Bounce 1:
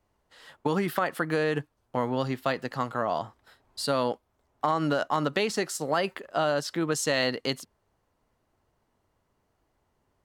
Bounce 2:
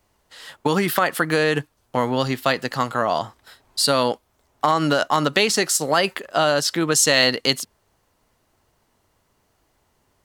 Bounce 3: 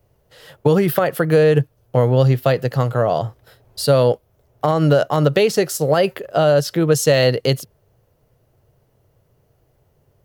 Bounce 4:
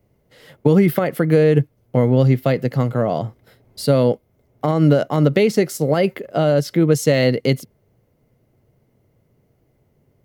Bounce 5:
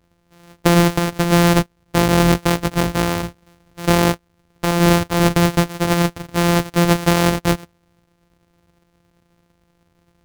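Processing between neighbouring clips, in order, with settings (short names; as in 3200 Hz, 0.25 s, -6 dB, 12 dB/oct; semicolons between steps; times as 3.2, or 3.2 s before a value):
high shelf 2300 Hz +9 dB; gain +6 dB
graphic EQ 125/250/500/1000/2000/4000/8000 Hz +12/-8/+7/-9/-6/-7/-11 dB; gain +4.5 dB
small resonant body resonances 230/2100 Hz, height 12 dB, ringing for 20 ms; gain -5 dB
sample sorter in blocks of 256 samples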